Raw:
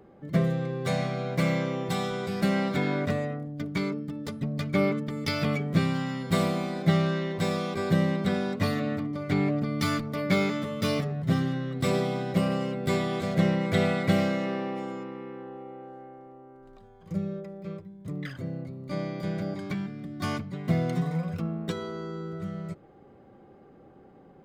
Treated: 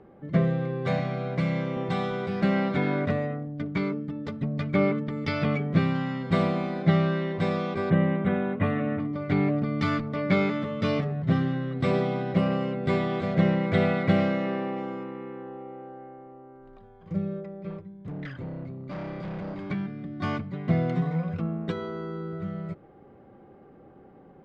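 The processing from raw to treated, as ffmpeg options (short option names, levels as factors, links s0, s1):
-filter_complex "[0:a]asettb=1/sr,asplit=3[s0][s1][s2];[s0]atrim=end=0.994[s3];[s1]atrim=start=0.99:end=1.77,asetpts=PTS-STARTPTS,afade=t=in:d=0.004:c=qsin,afade=t=out:st=0.776:d=0.004:c=qsin,acrossover=split=200|3000[s4][s5][s6];[s5]acompressor=threshold=0.0316:ratio=6:attack=3.2:release=140:knee=2.83:detection=peak[s7];[s4][s7][s6]amix=inputs=3:normalize=0[s8];[s2]atrim=start=1.766[s9];[s3][s8]acrossfade=d=0.004:c1=hsin:c2=qsin[s10];[s10][s9]acrossfade=d=0.004:c1=qsin:c2=hsin,asettb=1/sr,asplit=3[s11][s12][s13];[s11]atrim=end=7.904[s14];[s12]atrim=start=7.9:end=9,asetpts=PTS-STARTPTS,afade=t=in:d=0.004:c=qsin,afade=t=out:st=1.096:d=0.004:c=qsin,asuperstop=centerf=5200:order=4:qfactor=0.91[s15];[s13]atrim=start=8.996[s16];[s14][s15]acrossfade=d=0.004:c1=hsin:c2=qsin[s17];[s17][s16]acrossfade=d=0.004:c1=qsin:c2=hsin,asettb=1/sr,asplit=3[s18][s19][s20];[s18]atrim=end=17.694[s21];[s19]atrim=start=17.69:end=19.7,asetpts=PTS-STARTPTS,afade=t=in:d=0.004:c=qsin,afade=t=out:st=2.006:d=0.004:c=qsin,asoftclip=type=hard:threshold=0.02[s22];[s20]atrim=start=19.696[s23];[s21][s22]acrossfade=d=0.004:c1=hsin:c2=qsin[s24];[s24][s23]acrossfade=d=0.004:c1=qsin:c2=hsin,lowpass=2900,volume=1.19"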